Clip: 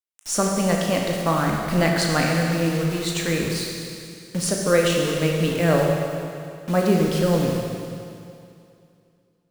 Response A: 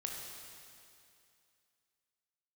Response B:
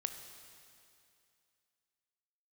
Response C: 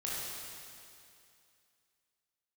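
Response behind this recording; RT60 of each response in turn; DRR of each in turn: A; 2.5, 2.5, 2.5 seconds; −0.5, 6.5, −7.0 decibels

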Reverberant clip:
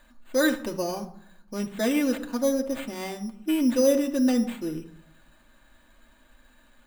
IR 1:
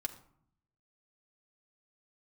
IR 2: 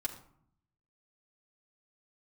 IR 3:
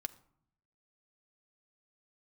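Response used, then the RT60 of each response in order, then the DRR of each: 1; 0.65, 0.65, 0.65 seconds; 1.5, −3.0, 8.0 decibels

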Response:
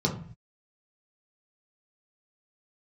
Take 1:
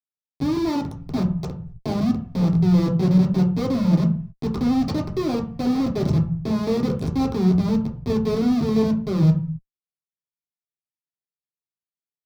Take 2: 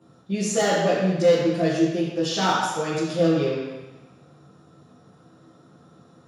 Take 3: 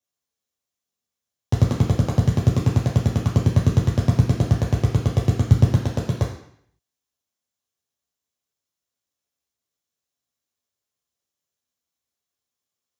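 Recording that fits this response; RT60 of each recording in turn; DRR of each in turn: 1; 0.45, 1.1, 0.65 seconds; −1.5, −10.0, −4.0 decibels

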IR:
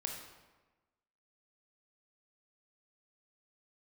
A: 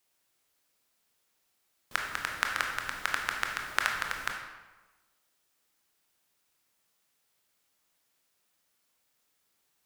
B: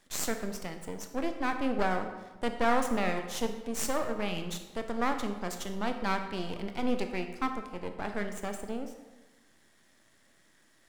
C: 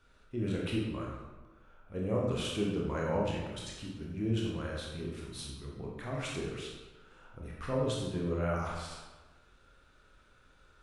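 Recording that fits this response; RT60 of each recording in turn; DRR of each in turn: A; 1.2, 1.2, 1.2 seconds; 1.5, 6.0, −3.0 decibels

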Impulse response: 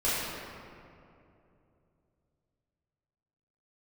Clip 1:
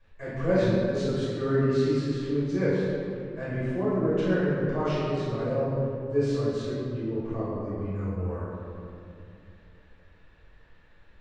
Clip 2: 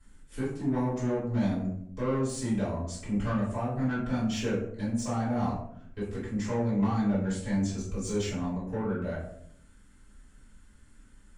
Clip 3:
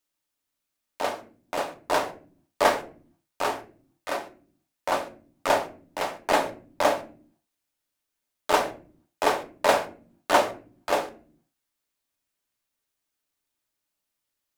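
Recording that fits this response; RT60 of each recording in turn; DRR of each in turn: 1; 2.7 s, 0.70 s, non-exponential decay; −11.5, −11.5, 4.5 decibels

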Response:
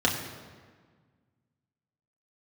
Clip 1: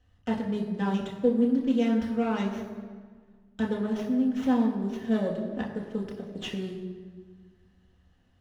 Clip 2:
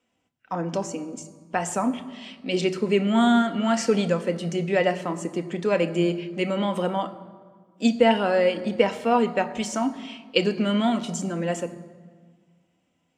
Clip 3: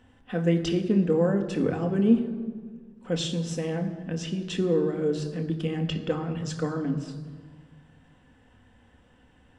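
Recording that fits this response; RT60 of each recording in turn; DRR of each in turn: 1; 1.6, 1.6, 1.6 seconds; −2.5, 9.0, 3.5 decibels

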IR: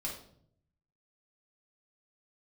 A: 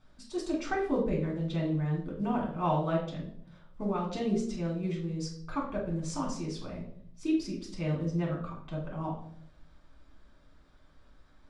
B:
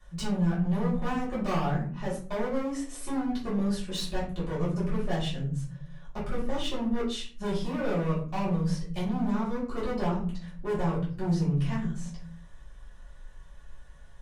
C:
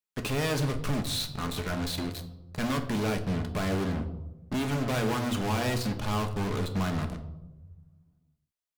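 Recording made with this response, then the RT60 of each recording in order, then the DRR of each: A; 0.65, 0.45, 1.0 seconds; −4.0, −9.5, 5.5 decibels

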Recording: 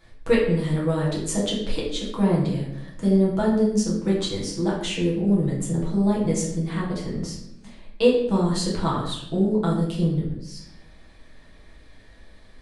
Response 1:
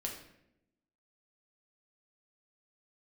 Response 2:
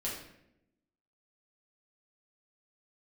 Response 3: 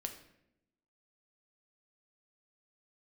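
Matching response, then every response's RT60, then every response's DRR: 2; 0.80, 0.80, 0.80 seconds; −0.5, −6.0, 5.0 decibels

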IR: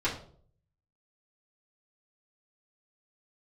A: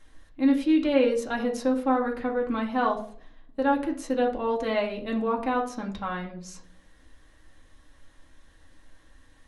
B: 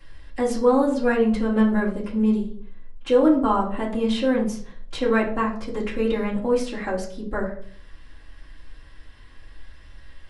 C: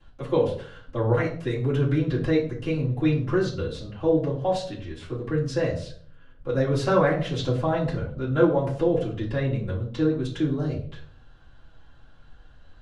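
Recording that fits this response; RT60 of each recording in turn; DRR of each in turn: B; 0.55, 0.55, 0.55 seconds; −1.0, −10.0, −15.0 decibels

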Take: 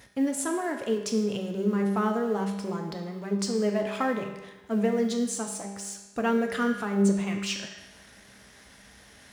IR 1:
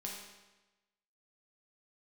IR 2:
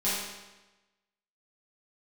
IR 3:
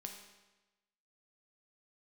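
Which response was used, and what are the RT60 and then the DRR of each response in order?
3; 1.1, 1.1, 1.1 seconds; −2.5, −11.0, 2.5 decibels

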